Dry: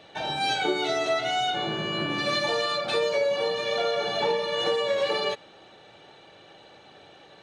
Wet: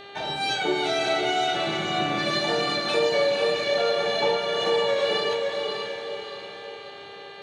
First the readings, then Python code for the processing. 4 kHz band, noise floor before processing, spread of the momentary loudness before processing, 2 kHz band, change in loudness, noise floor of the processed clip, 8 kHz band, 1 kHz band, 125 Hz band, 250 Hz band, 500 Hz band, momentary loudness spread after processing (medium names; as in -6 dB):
+2.0 dB, -52 dBFS, 3 LU, +2.5 dB, +1.5 dB, -42 dBFS, +2.0 dB, +1.5 dB, +1.5 dB, +3.0 dB, +2.5 dB, 14 LU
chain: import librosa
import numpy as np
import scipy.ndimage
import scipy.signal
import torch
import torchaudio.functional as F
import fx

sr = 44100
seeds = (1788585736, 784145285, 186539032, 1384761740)

y = fx.doubler(x, sr, ms=30.0, db=-12.0)
y = fx.echo_diffused(y, sr, ms=519, feedback_pct=47, wet_db=-4.0)
y = fx.dmg_buzz(y, sr, base_hz=400.0, harmonics=11, level_db=-44.0, tilt_db=-3, odd_only=False)